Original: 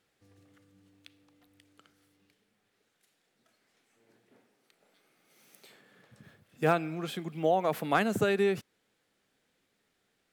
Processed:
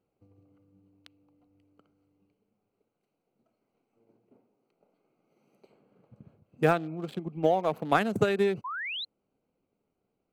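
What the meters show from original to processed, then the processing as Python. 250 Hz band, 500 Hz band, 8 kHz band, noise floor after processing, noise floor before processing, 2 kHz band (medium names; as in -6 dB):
+1.5 dB, +1.5 dB, no reading, -82 dBFS, -77 dBFS, +1.5 dB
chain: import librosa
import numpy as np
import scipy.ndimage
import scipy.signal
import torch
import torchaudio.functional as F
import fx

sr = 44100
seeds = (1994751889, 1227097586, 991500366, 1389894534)

y = fx.wiener(x, sr, points=25)
y = fx.transient(y, sr, attack_db=5, sustain_db=0)
y = fx.spec_paint(y, sr, seeds[0], shape='rise', start_s=8.64, length_s=0.41, low_hz=950.0, high_hz=4200.0, level_db=-35.0)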